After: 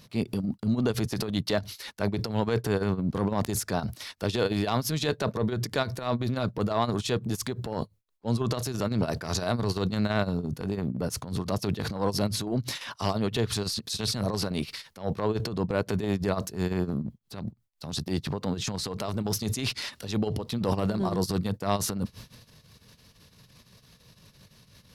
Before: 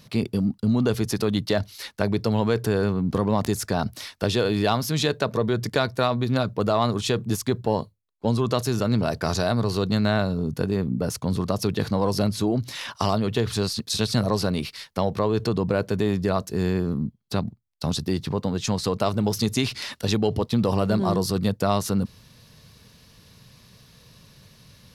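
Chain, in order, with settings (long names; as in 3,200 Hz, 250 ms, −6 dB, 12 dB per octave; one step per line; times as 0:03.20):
amplitude tremolo 5.9 Hz, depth 91%
transient designer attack −7 dB, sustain +8 dB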